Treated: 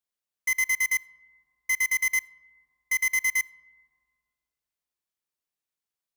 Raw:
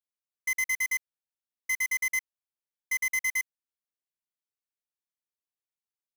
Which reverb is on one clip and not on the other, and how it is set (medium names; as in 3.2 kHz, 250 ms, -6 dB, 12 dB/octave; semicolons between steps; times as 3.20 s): algorithmic reverb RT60 2.2 s, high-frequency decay 0.3×, pre-delay 15 ms, DRR 19.5 dB; trim +3.5 dB